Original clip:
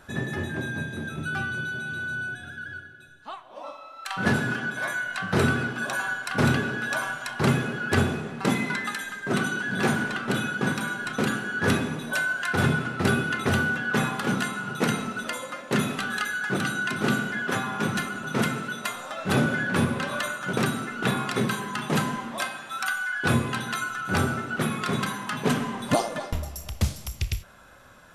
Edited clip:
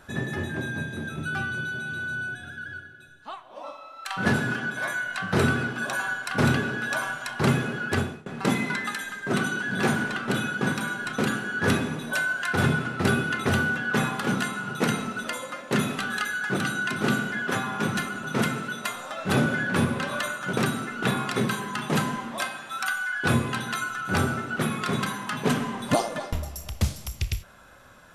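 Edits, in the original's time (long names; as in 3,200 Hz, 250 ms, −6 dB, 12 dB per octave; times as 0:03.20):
0:07.82–0:08.26: fade out, to −23 dB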